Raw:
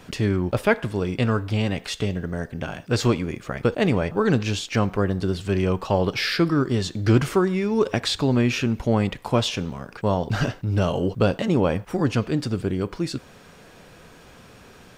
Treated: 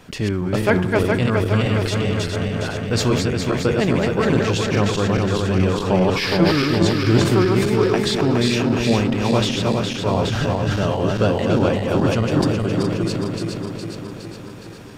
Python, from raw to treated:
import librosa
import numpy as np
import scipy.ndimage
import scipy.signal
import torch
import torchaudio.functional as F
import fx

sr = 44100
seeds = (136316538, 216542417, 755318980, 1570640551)

y = fx.reverse_delay_fb(x, sr, ms=207, feedback_pct=78, wet_db=-2.5)
y = fx.sustainer(y, sr, db_per_s=56.0)